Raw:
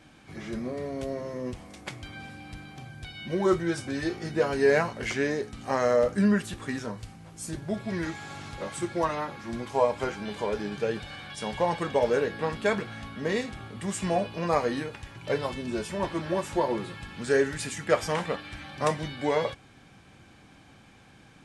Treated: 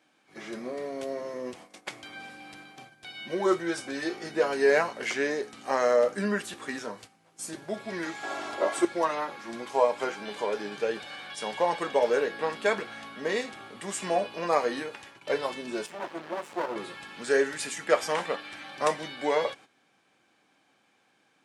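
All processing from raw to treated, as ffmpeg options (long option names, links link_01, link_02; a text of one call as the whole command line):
ffmpeg -i in.wav -filter_complex "[0:a]asettb=1/sr,asplit=3[link_01][link_02][link_03];[link_01]atrim=end=8.234[link_04];[link_02]atrim=start=8.23:end=8.85,asetpts=PTS-STARTPTS,afade=type=in:duration=0.004:curve=qsin,afade=type=out:start_time=0.616:duration=0.004:curve=qsin,equalizer=frequency=640:width=0.67:gain=11.5,aecho=1:1:3:0.57,atrim=end_sample=27342[link_05];[link_03]atrim=start=8.846[link_06];[link_04][link_05]acrossfade=duration=0.004:curve1=hsin:curve2=qsin[link_07];[link_07][link_06]acrossfade=duration=0.004:curve1=qsin:curve2=hsin,asettb=1/sr,asplit=3[link_08][link_09][link_10];[link_08]atrim=end=15.864[link_11];[link_09]atrim=start=15.86:end=16.76,asetpts=PTS-STARTPTS,afade=type=in:duration=0.004:curve=qsin,afade=type=out:start_time=0.896:duration=0.004:curve=qsin,highpass=85,highshelf=frequency=2300:gain=-8,aeval=exprs='max(val(0),0)':channel_layout=same[link_12];[link_10]atrim=start=16.756[link_13];[link_11][link_12]acrossfade=duration=0.004:curve1=hsin:curve2=qsin[link_14];[link_14][link_13]acrossfade=duration=0.004:curve1=qsin:curve2=hsin,highpass=340,agate=range=-11dB:threshold=-48dB:ratio=16:detection=peak,volume=1dB" out.wav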